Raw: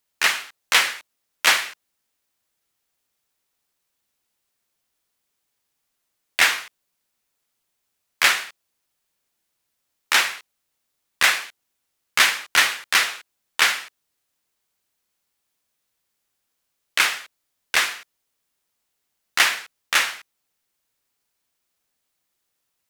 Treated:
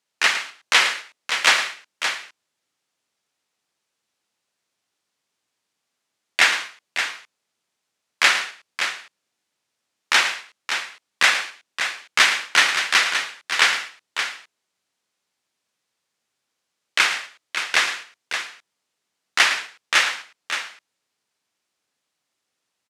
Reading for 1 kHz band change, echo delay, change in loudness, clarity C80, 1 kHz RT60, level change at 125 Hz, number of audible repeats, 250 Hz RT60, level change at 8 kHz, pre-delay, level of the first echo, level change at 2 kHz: +2.0 dB, 110 ms, −0.5 dB, no reverb audible, no reverb audible, can't be measured, 2, no reverb audible, −0.5 dB, no reverb audible, −11.5 dB, +2.0 dB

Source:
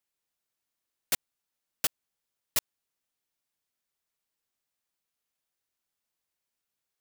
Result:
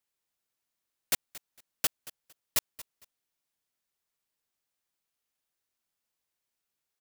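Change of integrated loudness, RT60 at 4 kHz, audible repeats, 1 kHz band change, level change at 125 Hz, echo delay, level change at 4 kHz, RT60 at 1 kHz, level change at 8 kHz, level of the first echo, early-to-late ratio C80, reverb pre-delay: 0.0 dB, no reverb audible, 2, 0.0 dB, 0.0 dB, 228 ms, 0.0 dB, no reverb audible, 0.0 dB, −18.0 dB, no reverb audible, no reverb audible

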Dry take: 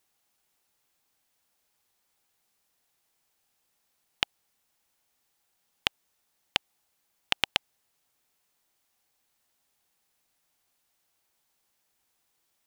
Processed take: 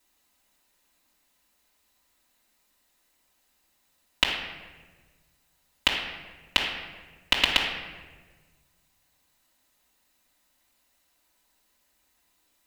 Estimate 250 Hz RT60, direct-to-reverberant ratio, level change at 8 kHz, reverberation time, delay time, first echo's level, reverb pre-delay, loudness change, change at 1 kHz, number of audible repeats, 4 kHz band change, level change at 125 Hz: 1.8 s, −4.5 dB, +4.5 dB, 1.4 s, no echo audible, no echo audible, 3 ms, +4.5 dB, +6.0 dB, no echo audible, +6.0 dB, +5.5 dB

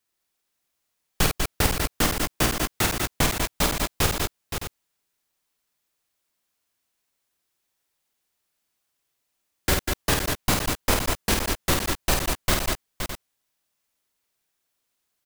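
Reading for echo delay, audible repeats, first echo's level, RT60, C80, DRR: 52 ms, 4, −4.5 dB, no reverb audible, no reverb audible, no reverb audible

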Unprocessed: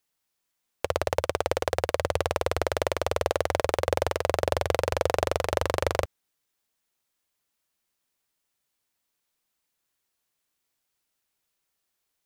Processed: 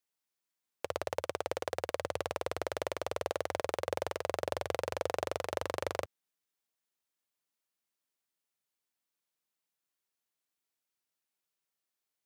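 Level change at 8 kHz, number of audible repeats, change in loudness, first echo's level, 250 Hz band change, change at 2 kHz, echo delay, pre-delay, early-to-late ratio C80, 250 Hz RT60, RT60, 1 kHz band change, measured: −9.0 dB, no echo audible, −9.0 dB, no echo audible, −9.0 dB, −9.0 dB, no echo audible, no reverb audible, no reverb audible, no reverb audible, no reverb audible, −9.0 dB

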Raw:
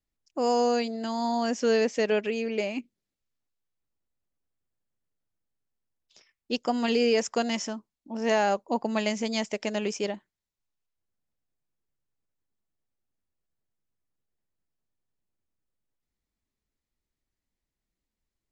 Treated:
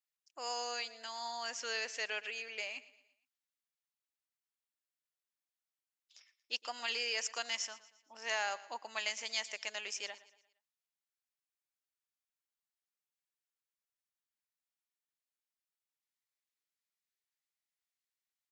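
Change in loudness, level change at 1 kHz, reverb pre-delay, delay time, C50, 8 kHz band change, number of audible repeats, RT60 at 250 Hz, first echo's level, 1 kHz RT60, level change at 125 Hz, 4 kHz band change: −11.0 dB, −12.5 dB, no reverb audible, 116 ms, no reverb audible, can't be measured, 3, no reverb audible, −18.0 dB, no reverb audible, can't be measured, −3.0 dB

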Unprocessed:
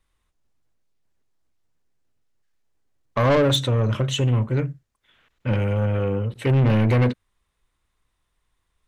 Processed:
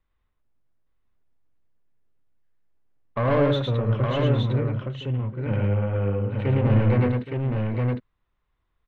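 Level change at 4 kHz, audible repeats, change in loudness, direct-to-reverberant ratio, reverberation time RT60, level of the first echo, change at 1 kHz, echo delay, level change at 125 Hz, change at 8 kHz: −8.0 dB, 4, −2.5 dB, no reverb audible, no reverb audible, −19.0 dB, −2.0 dB, 47 ms, −1.0 dB, below −20 dB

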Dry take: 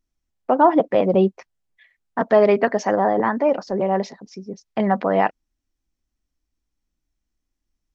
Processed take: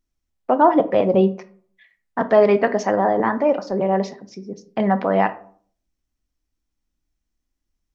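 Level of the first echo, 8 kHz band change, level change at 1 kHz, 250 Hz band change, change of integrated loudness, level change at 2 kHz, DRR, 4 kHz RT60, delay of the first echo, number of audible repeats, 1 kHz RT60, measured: no echo audible, can't be measured, +0.5 dB, +1.0 dB, +0.5 dB, +0.5 dB, 11.5 dB, 0.25 s, no echo audible, no echo audible, 0.50 s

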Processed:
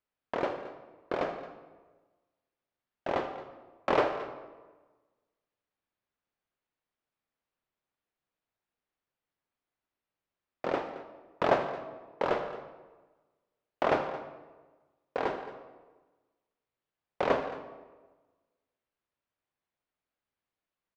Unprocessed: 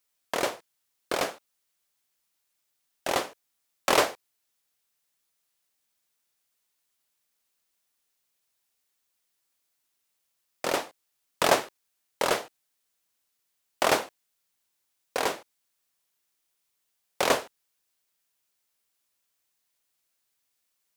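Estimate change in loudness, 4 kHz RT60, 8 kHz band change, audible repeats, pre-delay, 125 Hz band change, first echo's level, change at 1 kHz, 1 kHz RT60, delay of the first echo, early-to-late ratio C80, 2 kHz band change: −5.0 dB, 0.80 s, below −25 dB, 2, 36 ms, +0.5 dB, −15.5 dB, −3.0 dB, 1.2 s, 79 ms, 9.5 dB, −7.0 dB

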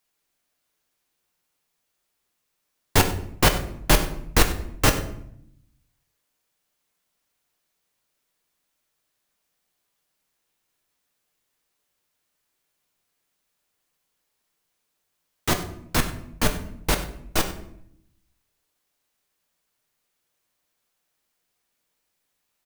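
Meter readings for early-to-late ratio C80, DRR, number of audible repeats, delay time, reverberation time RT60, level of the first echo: 12.5 dB, 4.5 dB, 1, 96 ms, 0.70 s, −16.5 dB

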